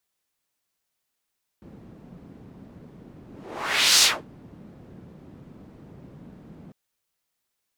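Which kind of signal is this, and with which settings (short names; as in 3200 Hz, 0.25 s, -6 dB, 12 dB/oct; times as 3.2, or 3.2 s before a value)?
whoosh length 5.10 s, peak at 2.4, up 0.79 s, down 0.25 s, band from 200 Hz, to 5200 Hz, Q 1.4, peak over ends 30 dB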